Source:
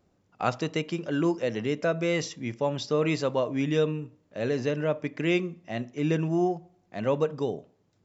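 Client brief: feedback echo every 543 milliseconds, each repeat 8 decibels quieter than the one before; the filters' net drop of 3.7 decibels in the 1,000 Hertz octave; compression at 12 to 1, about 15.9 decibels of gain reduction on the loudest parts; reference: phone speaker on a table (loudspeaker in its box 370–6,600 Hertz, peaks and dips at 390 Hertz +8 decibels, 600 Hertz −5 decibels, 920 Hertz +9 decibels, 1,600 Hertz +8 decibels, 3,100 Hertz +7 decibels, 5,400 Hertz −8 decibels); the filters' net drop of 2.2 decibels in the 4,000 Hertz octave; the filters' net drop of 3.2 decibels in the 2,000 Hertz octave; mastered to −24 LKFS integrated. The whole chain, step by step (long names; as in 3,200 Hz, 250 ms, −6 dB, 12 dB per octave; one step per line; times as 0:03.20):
parametric band 1,000 Hz −9 dB
parametric band 2,000 Hz −6 dB
parametric band 4,000 Hz −4 dB
downward compressor 12 to 1, threshold −38 dBFS
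loudspeaker in its box 370–6,600 Hz, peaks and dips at 390 Hz +8 dB, 600 Hz −5 dB, 920 Hz +9 dB, 1,600 Hz +8 dB, 3,100 Hz +7 dB, 5,400 Hz −8 dB
repeating echo 543 ms, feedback 40%, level −8 dB
level +20 dB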